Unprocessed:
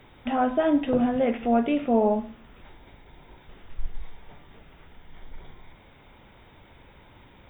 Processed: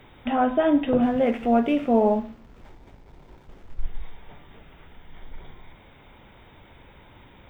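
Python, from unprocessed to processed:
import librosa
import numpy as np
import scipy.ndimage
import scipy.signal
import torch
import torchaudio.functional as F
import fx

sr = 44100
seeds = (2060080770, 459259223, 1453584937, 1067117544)

y = fx.backlash(x, sr, play_db=-49.0, at=(1.02, 3.83))
y = y * librosa.db_to_amplitude(2.0)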